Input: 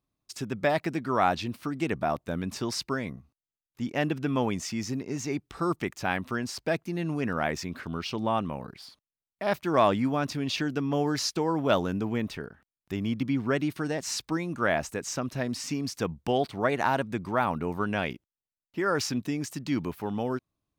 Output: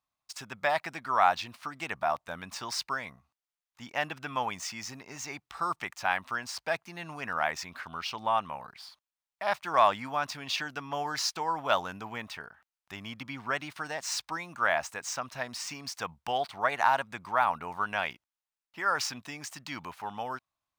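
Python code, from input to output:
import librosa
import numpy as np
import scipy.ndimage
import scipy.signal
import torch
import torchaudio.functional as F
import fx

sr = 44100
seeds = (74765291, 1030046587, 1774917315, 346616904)

y = scipy.ndimage.median_filter(x, 3, mode='constant')
y = fx.low_shelf_res(y, sr, hz=560.0, db=-13.5, q=1.5)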